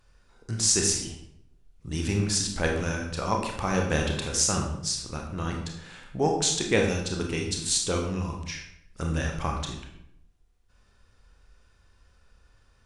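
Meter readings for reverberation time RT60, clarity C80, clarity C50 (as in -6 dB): 0.75 s, 8.0 dB, 5.0 dB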